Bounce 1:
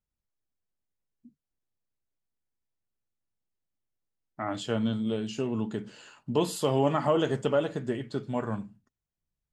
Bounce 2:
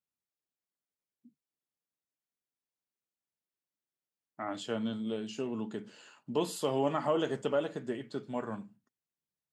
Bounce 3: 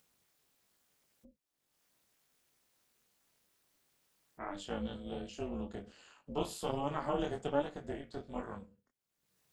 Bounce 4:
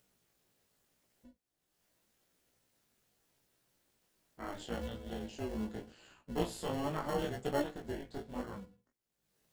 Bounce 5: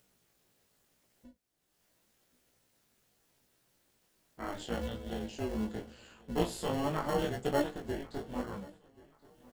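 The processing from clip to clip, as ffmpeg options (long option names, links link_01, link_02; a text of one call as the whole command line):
ffmpeg -i in.wav -af "highpass=180,volume=-4.5dB" out.wav
ffmpeg -i in.wav -af "flanger=delay=20:depth=4.9:speed=1.3,tremolo=f=290:d=0.889,acompressor=mode=upward:threshold=-56dB:ratio=2.5,volume=2dB" out.wav
ffmpeg -i in.wav -filter_complex "[0:a]asplit=2[link_01][link_02];[link_02]acrusher=samples=36:mix=1:aa=0.000001,volume=-7dB[link_03];[link_01][link_03]amix=inputs=2:normalize=0,flanger=delay=16:depth=2.9:speed=0.81,volume=1.5dB" out.wav
ffmpeg -i in.wav -af "aecho=1:1:1081|2162:0.0708|0.0227,volume=3.5dB" out.wav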